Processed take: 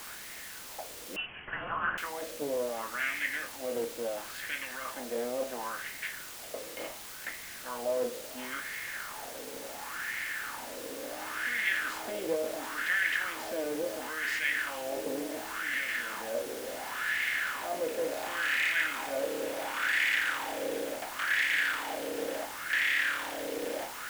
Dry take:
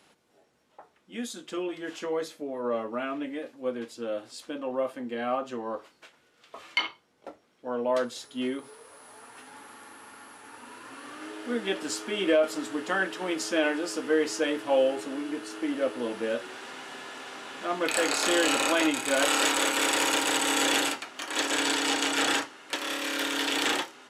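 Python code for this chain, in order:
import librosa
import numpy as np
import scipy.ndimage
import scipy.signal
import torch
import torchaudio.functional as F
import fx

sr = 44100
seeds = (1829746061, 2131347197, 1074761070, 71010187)

p1 = fx.bin_compress(x, sr, power=0.6)
p2 = fx.over_compress(p1, sr, threshold_db=-27.0, ratio=-0.5)
p3 = p1 + (p2 * 10.0 ** (-2.5 / 20.0))
p4 = fx.wah_lfo(p3, sr, hz=0.71, low_hz=470.0, high_hz=2000.0, q=4.9)
p5 = fx.band_shelf(p4, sr, hz=670.0, db=-10.0, octaves=2.3)
p6 = fx.quant_dither(p5, sr, seeds[0], bits=8, dither='triangular')
p7 = fx.freq_invert(p6, sr, carrier_hz=3200, at=(1.16, 1.98))
p8 = fx.doppler_dist(p7, sr, depth_ms=0.16)
y = p8 * 10.0 ** (4.0 / 20.0)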